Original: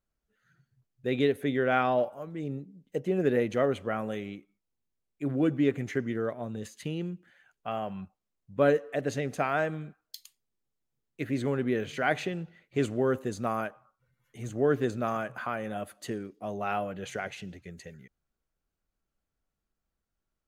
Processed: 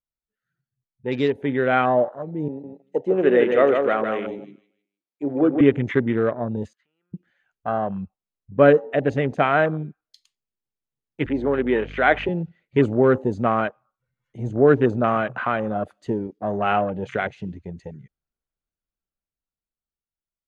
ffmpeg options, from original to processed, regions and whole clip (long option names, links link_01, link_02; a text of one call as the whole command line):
ffmpeg -i in.wav -filter_complex "[0:a]asettb=1/sr,asplit=3[link_01][link_02][link_03];[link_01]atrim=end=2.484[link_04];[link_02]atrim=start=2.48:end=5.61,asetpts=PTS-STARTPTS,afade=type=in:duration=0.004:curve=qsin,afade=type=out:start_time=3.126:duration=0.004:curve=qsin,highpass=320,aecho=1:1:155|310|465|620:0.562|0.174|0.054|0.0168,atrim=end_sample=138033[link_05];[link_03]atrim=start=5.606[link_06];[link_04][link_05]acrossfade=duration=0.004:curve1=hsin:curve2=qsin[link_07];[link_07][link_06]acrossfade=duration=0.004:curve1=qsin:curve2=hsin,asettb=1/sr,asplit=3[link_08][link_09][link_10];[link_08]atrim=end=6.734[link_11];[link_09]atrim=start=6.73:end=7.14,asetpts=PTS-STARTPTS,afade=type=in:duration=0.004:curve=qsin,afade=type=out:start_time=0.406:duration=0.004:curve=qsin,acompressor=threshold=-43dB:ratio=6:attack=3.2:release=140:knee=1:detection=peak,bandpass=frequency=1400:width_type=q:width=3.7[link_12];[link_10]atrim=start=7.136[link_13];[link_11][link_12]acrossfade=duration=0.004:curve1=hsin:curve2=qsin[link_14];[link_14][link_13]acrossfade=duration=0.004:curve1=qsin:curve2=hsin,asettb=1/sr,asplit=3[link_15][link_16][link_17];[link_15]atrim=end=11.264[link_18];[link_16]atrim=start=11.26:end=12.29,asetpts=PTS-STARTPTS,afade=type=in:duration=0.004:curve=qsin,afade=type=out:start_time=1.026:duration=0.004:curve=qsin,highpass=290,lowpass=5500,aeval=exprs='val(0)+0.00398*(sin(2*PI*50*n/s)+sin(2*PI*2*50*n/s)/2+sin(2*PI*3*50*n/s)/3+sin(2*PI*4*50*n/s)/4+sin(2*PI*5*50*n/s)/5)':channel_layout=same[link_19];[link_17]atrim=start=12.286[link_20];[link_18][link_19]acrossfade=duration=0.004:curve1=hsin:curve2=qsin[link_21];[link_21][link_20]acrossfade=duration=0.004:curve1=qsin:curve2=hsin,afwtdn=0.01,lowpass=5600,dynaudnorm=framelen=220:gausssize=17:maxgain=8dB,volume=2.5dB" out.wav